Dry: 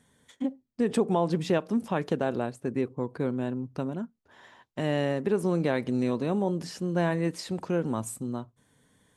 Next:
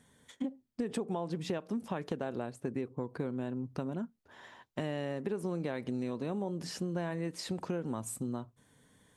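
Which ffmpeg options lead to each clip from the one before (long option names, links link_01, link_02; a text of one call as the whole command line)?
ffmpeg -i in.wav -af "acompressor=threshold=-32dB:ratio=6" out.wav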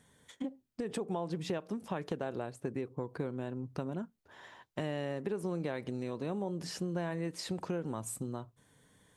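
ffmpeg -i in.wav -af "equalizer=frequency=240:width_type=o:width=0.26:gain=-5.5" out.wav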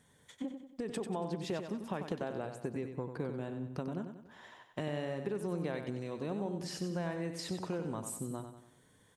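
ffmpeg -i in.wav -af "aecho=1:1:94|188|282|376|470:0.398|0.183|0.0842|0.0388|0.0178,volume=-1.5dB" out.wav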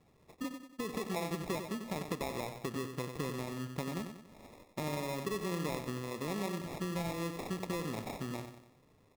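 ffmpeg -i in.wav -af "acrusher=samples=29:mix=1:aa=0.000001" out.wav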